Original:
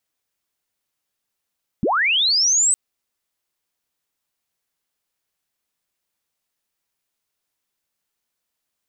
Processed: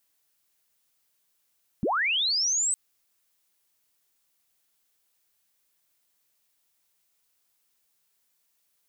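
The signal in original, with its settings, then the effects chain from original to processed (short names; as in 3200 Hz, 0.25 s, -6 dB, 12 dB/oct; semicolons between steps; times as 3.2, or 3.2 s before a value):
chirp linear 150 Hz -> 8200 Hz -16 dBFS -> -13.5 dBFS 0.91 s
limiter -22.5 dBFS; added noise blue -73 dBFS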